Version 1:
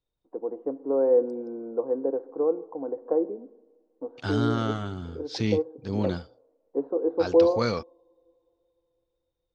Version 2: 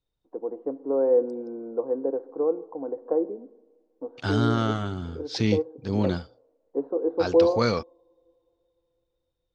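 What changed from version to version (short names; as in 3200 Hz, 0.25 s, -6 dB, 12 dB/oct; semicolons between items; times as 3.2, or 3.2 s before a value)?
second voice +3.0 dB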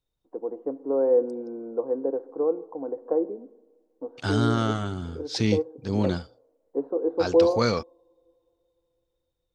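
master: remove LPF 5700 Hz 12 dB/oct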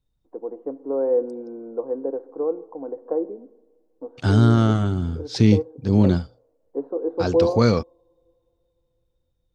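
second voice: add low shelf 460 Hz +10.5 dB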